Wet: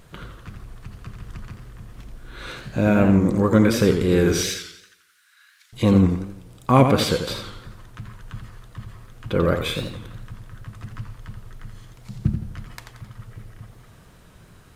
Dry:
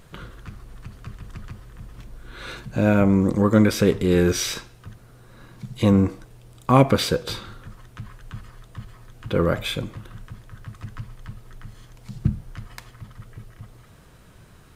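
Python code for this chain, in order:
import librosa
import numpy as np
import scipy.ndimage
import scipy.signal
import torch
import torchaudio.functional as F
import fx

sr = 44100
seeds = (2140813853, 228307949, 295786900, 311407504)

y = fx.cheby1_highpass(x, sr, hz=1500.0, order=4, at=(4.43, 5.73))
y = fx.echo_warbled(y, sr, ms=86, feedback_pct=45, rate_hz=2.8, cents=151, wet_db=-7.5)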